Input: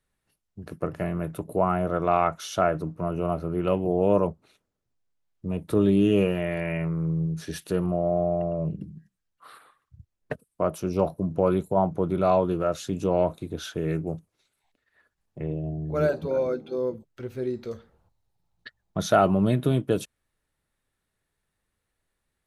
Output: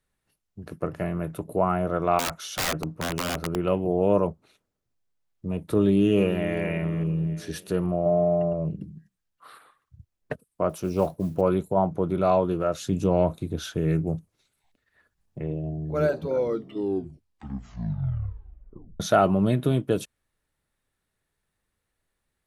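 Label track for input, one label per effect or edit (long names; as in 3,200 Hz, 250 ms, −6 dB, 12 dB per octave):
2.190000	3.560000	wrap-around overflow gain 20.5 dB
5.730000	6.590000	delay throw 440 ms, feedback 40%, level −12.5 dB
8.050000	8.530000	comb filter 6.8 ms
10.690000	11.410000	noise that follows the level under the signal 31 dB
12.810000	15.390000	bass and treble bass +6 dB, treble +2 dB
16.290000	16.290000	tape stop 2.71 s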